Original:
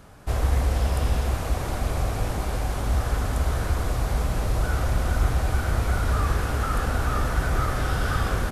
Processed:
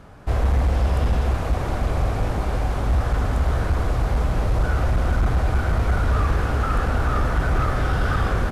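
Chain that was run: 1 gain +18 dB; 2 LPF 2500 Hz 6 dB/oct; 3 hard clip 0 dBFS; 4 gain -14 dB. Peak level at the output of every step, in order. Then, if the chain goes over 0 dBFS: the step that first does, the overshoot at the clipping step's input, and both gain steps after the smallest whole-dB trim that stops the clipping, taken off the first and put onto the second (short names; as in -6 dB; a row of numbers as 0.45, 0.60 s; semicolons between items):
+8.0, +7.5, 0.0, -14.0 dBFS; step 1, 7.5 dB; step 1 +10 dB, step 4 -6 dB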